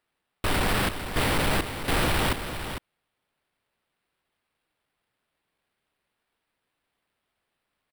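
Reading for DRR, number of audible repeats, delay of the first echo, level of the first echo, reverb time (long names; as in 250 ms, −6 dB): no reverb audible, 1, 452 ms, −9.5 dB, no reverb audible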